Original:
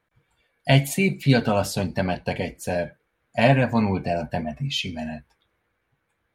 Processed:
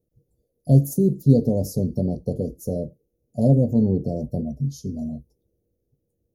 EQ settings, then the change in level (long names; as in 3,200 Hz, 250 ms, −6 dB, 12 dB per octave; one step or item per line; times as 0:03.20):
elliptic band-stop filter 480–6,100 Hz, stop band 60 dB
parametric band 2,700 Hz −7.5 dB 1.6 octaves
parametric band 8,000 Hz −14.5 dB 0.45 octaves
+4.0 dB